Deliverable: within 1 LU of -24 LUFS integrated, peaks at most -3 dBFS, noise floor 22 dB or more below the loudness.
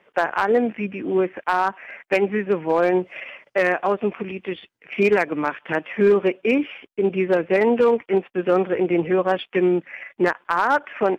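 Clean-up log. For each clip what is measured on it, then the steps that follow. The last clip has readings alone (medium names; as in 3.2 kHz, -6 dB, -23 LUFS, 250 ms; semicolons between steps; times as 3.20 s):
clipped samples 0.8%; clipping level -10.0 dBFS; loudness -21.5 LUFS; peak level -10.0 dBFS; loudness target -24.0 LUFS
-> clip repair -10 dBFS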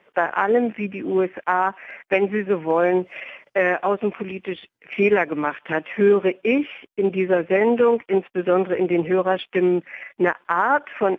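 clipped samples 0.0%; loudness -21.0 LUFS; peak level -6.0 dBFS; loudness target -24.0 LUFS
-> trim -3 dB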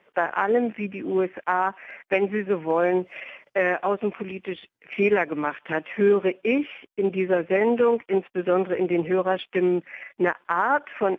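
loudness -24.0 LUFS; peak level -9.0 dBFS; noise floor -69 dBFS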